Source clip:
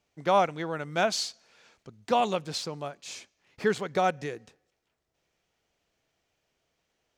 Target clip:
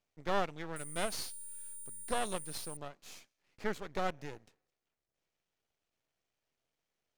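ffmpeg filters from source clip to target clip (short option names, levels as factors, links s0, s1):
-filter_complex "[0:a]asettb=1/sr,asplit=3[s0][s1][s2];[s0]atrim=end=0.764[s3];[s1]atrim=start=0.76:end=2.77,asetpts=PTS-STARTPTS,afade=t=in:d=0.004:c=qsin,afade=t=out:st=2.006:d=0.004:c=qsin,aeval=exprs='val(0)+0.0224*sin(2*PI*9200*n/s)':c=same[s4];[s2]atrim=start=2.766[s5];[s3][s4]acrossfade=d=0.004:c1=hsin:c2=qsin[s6];[s6][s5]acrossfade=d=0.004:c1=qsin:c2=hsin,aeval=exprs='max(val(0),0)':c=same,volume=0.473"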